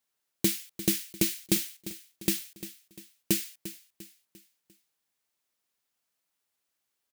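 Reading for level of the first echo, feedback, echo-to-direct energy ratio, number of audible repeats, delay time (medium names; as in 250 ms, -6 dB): -14.0 dB, 43%, -13.0 dB, 3, 348 ms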